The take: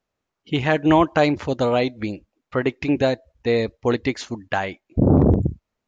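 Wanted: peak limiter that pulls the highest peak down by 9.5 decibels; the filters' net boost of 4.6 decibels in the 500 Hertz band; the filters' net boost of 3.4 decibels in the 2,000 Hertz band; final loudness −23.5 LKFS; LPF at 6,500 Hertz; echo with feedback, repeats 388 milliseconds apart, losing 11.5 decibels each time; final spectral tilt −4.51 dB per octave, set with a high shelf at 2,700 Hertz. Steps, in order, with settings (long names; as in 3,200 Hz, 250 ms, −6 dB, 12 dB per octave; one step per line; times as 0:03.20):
low-pass filter 6,500 Hz
parametric band 500 Hz +5.5 dB
parametric band 2,000 Hz +6.5 dB
high-shelf EQ 2,700 Hz −6.5 dB
brickwall limiter −11.5 dBFS
repeating echo 388 ms, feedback 27%, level −11.5 dB
level −0.5 dB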